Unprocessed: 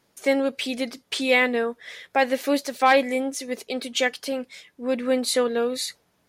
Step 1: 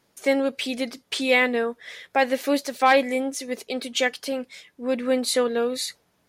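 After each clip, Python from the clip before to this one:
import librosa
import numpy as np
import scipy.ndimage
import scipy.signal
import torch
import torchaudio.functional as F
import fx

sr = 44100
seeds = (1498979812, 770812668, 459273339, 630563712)

y = x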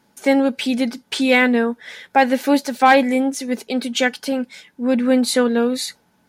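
y = np.clip(x, -10.0 ** (-8.5 / 20.0), 10.0 ** (-8.5 / 20.0))
y = fx.small_body(y, sr, hz=(220.0, 860.0, 1500.0), ring_ms=35, db=10)
y = y * 10.0 ** (3.0 / 20.0)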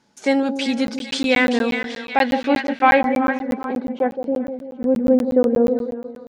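y = fx.echo_split(x, sr, split_hz=920.0, low_ms=166, high_ms=388, feedback_pct=52, wet_db=-8.0)
y = fx.filter_sweep_lowpass(y, sr, from_hz=6400.0, to_hz=580.0, start_s=1.8, end_s=4.35, q=1.5)
y = fx.buffer_crackle(y, sr, first_s=0.87, period_s=0.12, block=512, kind='zero')
y = y * 10.0 ** (-2.5 / 20.0)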